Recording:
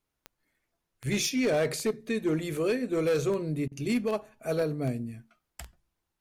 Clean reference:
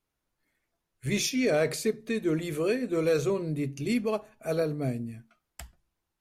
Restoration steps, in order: clip repair -21 dBFS; de-click; interpolate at 3.68 s, 34 ms

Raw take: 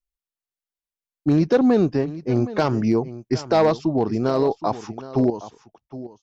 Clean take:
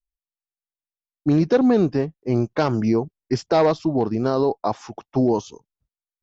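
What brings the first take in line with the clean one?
clip repair -10 dBFS; inverse comb 767 ms -15.5 dB; trim 0 dB, from 5.30 s +10 dB

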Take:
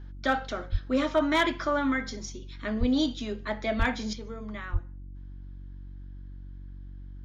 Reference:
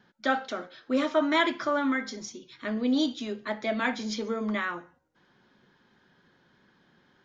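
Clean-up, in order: clip repair -15.5 dBFS; de-hum 47 Hz, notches 7; de-plosive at 0.71/2.79/3.78/4.72 s; gain correction +9.5 dB, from 4.13 s

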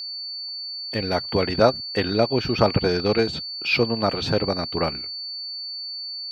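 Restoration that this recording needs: band-stop 4.5 kHz, Q 30

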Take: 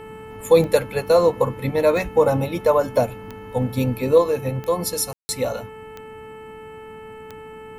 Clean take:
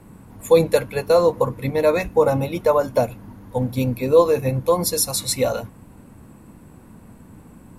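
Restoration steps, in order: de-click; de-hum 437.4 Hz, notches 7; room tone fill 5.13–5.29 s; trim 0 dB, from 4.18 s +3.5 dB

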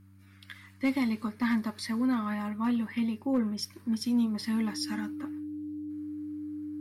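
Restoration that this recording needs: clip repair -20.5 dBFS; de-hum 97 Hz, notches 3; band-stop 300 Hz, Q 30

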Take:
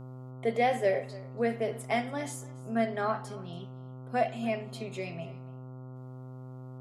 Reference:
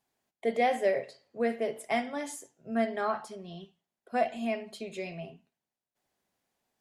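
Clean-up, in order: de-hum 128.4 Hz, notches 11; inverse comb 285 ms -20.5 dB

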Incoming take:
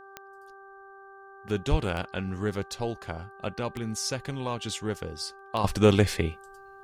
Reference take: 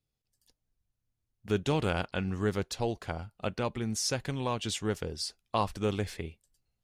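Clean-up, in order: de-click; de-hum 391.5 Hz, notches 4; 1.70–1.82 s: high-pass 140 Hz 24 dB/octave; trim 0 dB, from 5.64 s -11 dB

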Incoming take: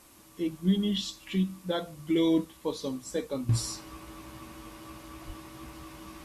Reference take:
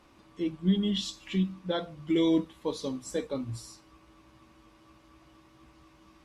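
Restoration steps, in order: 5.26–5.38 s: high-pass 140 Hz 24 dB/octave; noise print and reduce 7 dB; trim 0 dB, from 3.49 s -12 dB

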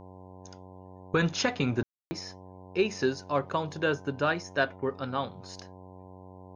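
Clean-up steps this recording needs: de-hum 92.9 Hz, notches 11; room tone fill 1.83–2.11 s

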